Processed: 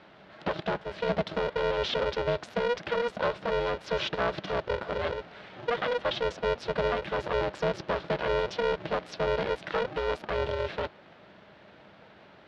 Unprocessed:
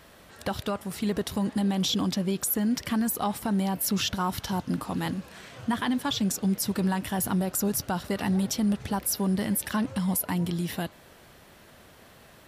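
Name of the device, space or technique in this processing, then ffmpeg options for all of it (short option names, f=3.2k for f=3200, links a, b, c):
ring modulator pedal into a guitar cabinet: -af "aeval=exprs='val(0)*sgn(sin(2*PI*240*n/s))':c=same,highpass=81,equalizer=f=200:t=q:w=4:g=9,equalizer=f=610:t=q:w=4:g=9,equalizer=f=1.5k:t=q:w=4:g=3,lowpass=f=4k:w=0.5412,lowpass=f=4k:w=1.3066,volume=-2.5dB"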